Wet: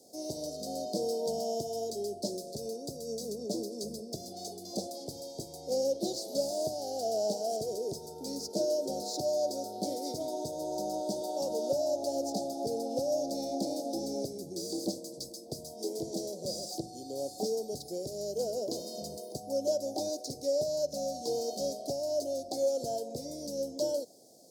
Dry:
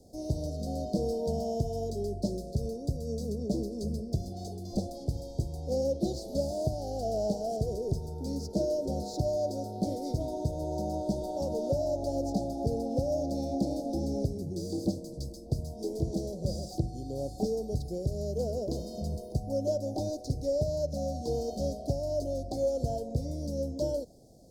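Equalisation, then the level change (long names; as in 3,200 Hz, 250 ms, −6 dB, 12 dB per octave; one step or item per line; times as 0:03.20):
high-pass filter 310 Hz 12 dB per octave
high-shelf EQ 2,400 Hz +8 dB
0.0 dB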